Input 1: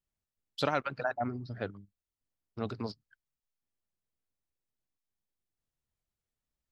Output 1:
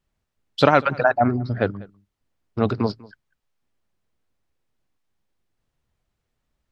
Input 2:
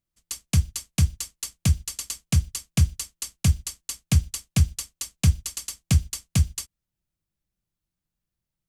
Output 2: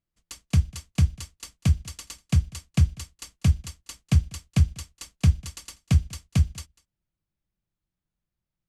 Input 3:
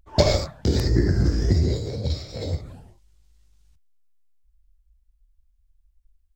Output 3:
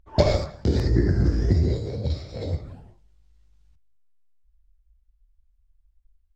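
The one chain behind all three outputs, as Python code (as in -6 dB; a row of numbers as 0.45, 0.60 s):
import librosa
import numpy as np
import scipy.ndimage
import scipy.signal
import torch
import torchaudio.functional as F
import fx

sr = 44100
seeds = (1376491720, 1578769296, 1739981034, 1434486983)

y = fx.lowpass(x, sr, hz=2500.0, slope=6)
y = y + 10.0 ** (-23.0 / 20.0) * np.pad(y, (int(195 * sr / 1000.0), 0))[:len(y)]
y = y * 10.0 ** (-26 / 20.0) / np.sqrt(np.mean(np.square(y)))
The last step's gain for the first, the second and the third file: +15.5, 0.0, -0.5 dB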